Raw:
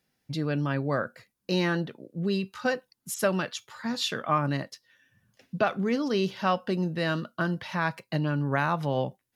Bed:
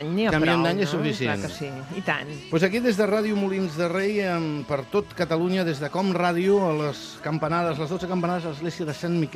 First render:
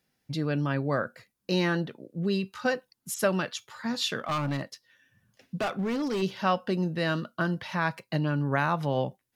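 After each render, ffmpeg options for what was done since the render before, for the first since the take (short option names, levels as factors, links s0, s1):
-filter_complex "[0:a]asplit=3[s0][s1][s2];[s0]afade=t=out:st=4.19:d=0.02[s3];[s1]volume=18.8,asoftclip=hard,volume=0.0531,afade=t=in:st=4.19:d=0.02,afade=t=out:st=6.21:d=0.02[s4];[s2]afade=t=in:st=6.21:d=0.02[s5];[s3][s4][s5]amix=inputs=3:normalize=0"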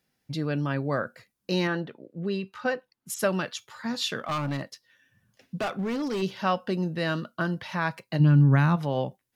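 -filter_complex "[0:a]asettb=1/sr,asplit=3[s0][s1][s2];[s0]atrim=end=1.674[s3];[s1]atrim=start=1.67:end=3.1,asetpts=PTS-STARTPTS,afade=t=in:d=0.004:c=qsin,afade=t=out:st=1.426:d=0.004:c=qsin,bass=f=250:g=-4,treble=f=4000:g=-10[s4];[s2]atrim=start=3.096[s5];[s3][s4]acrossfade=d=0.004:c1=hsin:c2=qsin[s6];[s6][s5]acrossfade=d=0.004:c1=qsin:c2=hsin,asplit=3[s7][s8][s9];[s7]afade=t=out:st=8.19:d=0.02[s10];[s8]asubboost=boost=5.5:cutoff=220,afade=t=in:st=8.19:d=0.02,afade=t=out:st=8.75:d=0.02[s11];[s9]afade=t=in:st=8.75:d=0.02[s12];[s10][s11][s12]amix=inputs=3:normalize=0"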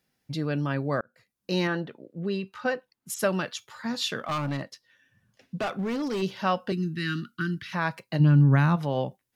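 -filter_complex "[0:a]asettb=1/sr,asplit=3[s0][s1][s2];[s0]atrim=end=4.514[s3];[s1]atrim=start=4.51:end=5.68,asetpts=PTS-STARTPTS,afade=t=in:d=0.004:c=qsin,afade=t=out:st=1.166:d=0.004:c=qsin,highshelf=f=9500:g=-6.5[s4];[s2]atrim=start=5.676[s5];[s3][s4]acrossfade=d=0.004:c1=hsin:c2=qsin[s6];[s6][s5]acrossfade=d=0.004:c1=qsin:c2=hsin,asettb=1/sr,asplit=3[s7][s8][s9];[s7]atrim=end=6.724[s10];[s8]atrim=start=6.72:end=7.73,asetpts=PTS-STARTPTS,afade=t=in:d=0.004:c=qsin,afade=t=out:st=1.006:d=0.004:c=qsin,asuperstop=centerf=690:order=8:qfactor=0.73[s11];[s9]atrim=start=7.726[s12];[s10][s11]acrossfade=d=0.004:c1=hsin:c2=qsin[s13];[s13][s12]acrossfade=d=0.004:c1=qsin:c2=hsin,asplit=2[s14][s15];[s14]atrim=end=1.01,asetpts=PTS-STARTPTS,afade=t=out:st=1.006:d=0.004:c=hsin[s16];[s15]atrim=start=1.01,asetpts=PTS-STARTPTS,afade=t=in:d=0.57[s17];[s16][s17]concat=n=2:v=0:a=1"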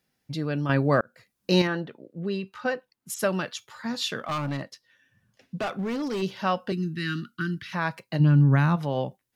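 -filter_complex "[0:a]asettb=1/sr,asplit=3[s0][s1][s2];[s0]atrim=end=0.694[s3];[s1]atrim=start=0.69:end=1.62,asetpts=PTS-STARTPTS,afade=t=in:d=0.004:c=qsin,afade=t=out:st=0.926:d=0.004:c=qsin,acontrast=61[s4];[s2]atrim=start=1.616[s5];[s3][s4]acrossfade=d=0.004:c1=hsin:c2=qsin[s6];[s6][s5]acrossfade=d=0.004:c1=qsin:c2=hsin"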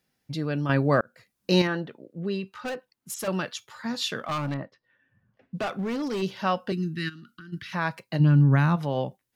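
-filter_complex "[0:a]asettb=1/sr,asplit=3[s0][s1][s2];[s0]atrim=end=2.614[s3];[s1]atrim=start=2.61:end=3.28,asetpts=PTS-STARTPTS,afade=t=in:d=0.004:c=qsin,afade=t=out:st=0.666:d=0.004:c=qsin,volume=28.2,asoftclip=hard,volume=0.0355[s4];[s2]atrim=start=3.276[s5];[s3][s4]acrossfade=d=0.004:c1=hsin:c2=qsin[s6];[s6][s5]acrossfade=d=0.004:c1=qsin:c2=hsin,asettb=1/sr,asplit=3[s7][s8][s9];[s7]atrim=end=4.544[s10];[s8]atrim=start=4.54:end=5.55,asetpts=PTS-STARTPTS,afade=t=in:d=0.004:c=qsin,afade=t=out:st=1.006:d=0.004:c=qsin,lowpass=1600[s11];[s9]atrim=start=5.546[s12];[s10][s11]acrossfade=d=0.004:c1=hsin:c2=qsin[s13];[s13][s12]acrossfade=d=0.004:c1=qsin:c2=hsin,asplit=3[s14][s15][s16];[s14]afade=t=out:st=7.08:d=0.02[s17];[s15]acompressor=threshold=0.00794:ratio=8:attack=3.2:release=140:knee=1:detection=peak,afade=t=in:st=7.08:d=0.02,afade=t=out:st=7.52:d=0.02[s18];[s16]afade=t=in:st=7.52:d=0.02[s19];[s17][s18][s19]amix=inputs=3:normalize=0"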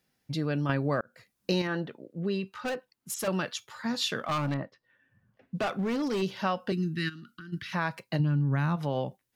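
-af "acompressor=threshold=0.0631:ratio=6"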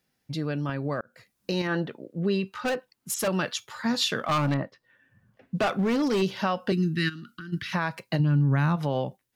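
-af "alimiter=limit=0.1:level=0:latency=1:release=219,dynaudnorm=f=900:g=3:m=1.78"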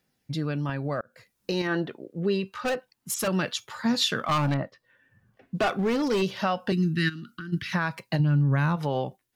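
-af "aphaser=in_gain=1:out_gain=1:delay=2.9:decay=0.26:speed=0.27:type=triangular"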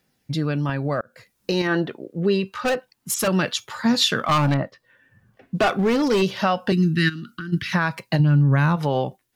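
-af "volume=1.88"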